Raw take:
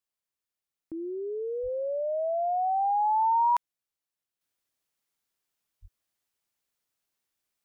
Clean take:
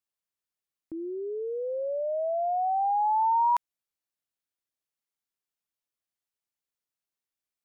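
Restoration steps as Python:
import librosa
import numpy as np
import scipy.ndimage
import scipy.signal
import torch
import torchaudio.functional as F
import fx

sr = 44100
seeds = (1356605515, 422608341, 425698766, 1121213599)

y = fx.fix_deplosive(x, sr, at_s=(1.62, 5.81))
y = fx.fix_level(y, sr, at_s=4.41, step_db=-7.5)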